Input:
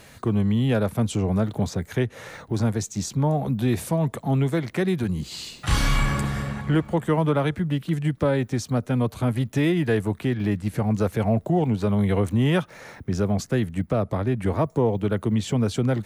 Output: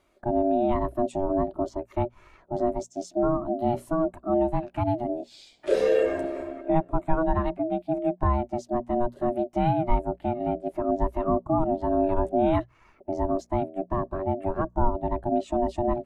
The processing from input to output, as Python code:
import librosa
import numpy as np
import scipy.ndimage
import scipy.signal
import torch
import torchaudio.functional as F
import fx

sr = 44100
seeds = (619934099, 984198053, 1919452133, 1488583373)

p1 = x * np.sin(2.0 * np.pi * 480.0 * np.arange(len(x)) / sr)
p2 = fx.low_shelf(p1, sr, hz=72.0, db=6.0)
p3 = fx.hum_notches(p2, sr, base_hz=60, count=4)
p4 = 10.0 ** (-23.5 / 20.0) * np.tanh(p3 / 10.0 ** (-23.5 / 20.0))
p5 = p3 + (p4 * 10.0 ** (-11.5 / 20.0))
y = fx.spectral_expand(p5, sr, expansion=1.5)